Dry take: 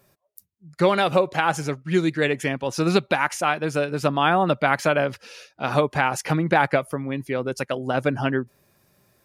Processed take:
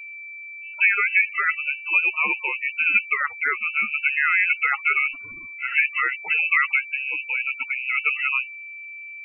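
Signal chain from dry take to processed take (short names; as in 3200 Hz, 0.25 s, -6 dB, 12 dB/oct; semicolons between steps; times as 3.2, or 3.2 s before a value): whine 470 Hz -35 dBFS; loudest bins only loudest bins 16; inverted band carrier 2800 Hz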